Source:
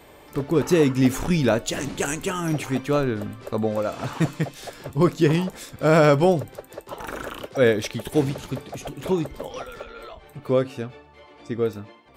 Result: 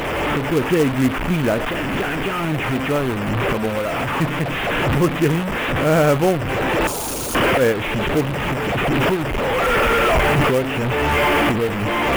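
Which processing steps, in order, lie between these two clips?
one-bit delta coder 16 kbps, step -18.5 dBFS; recorder AGC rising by 13 dB/s; 6.87–7.35 s: integer overflow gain 20 dB; short-mantissa float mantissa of 2-bit; trim +1 dB

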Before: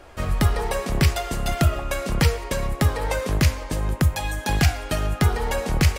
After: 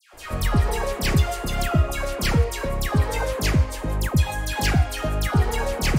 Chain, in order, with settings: phase dispersion lows, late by 136 ms, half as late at 1.5 kHz

